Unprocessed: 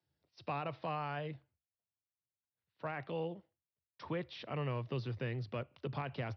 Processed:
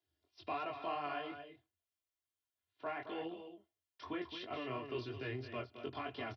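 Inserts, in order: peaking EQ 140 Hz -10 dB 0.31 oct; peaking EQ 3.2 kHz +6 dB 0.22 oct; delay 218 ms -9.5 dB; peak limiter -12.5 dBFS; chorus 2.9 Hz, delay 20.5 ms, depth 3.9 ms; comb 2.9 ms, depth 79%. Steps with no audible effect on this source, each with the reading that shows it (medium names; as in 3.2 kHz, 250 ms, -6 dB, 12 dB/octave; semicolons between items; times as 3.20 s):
peak limiter -12.5 dBFS: peak at its input -27.0 dBFS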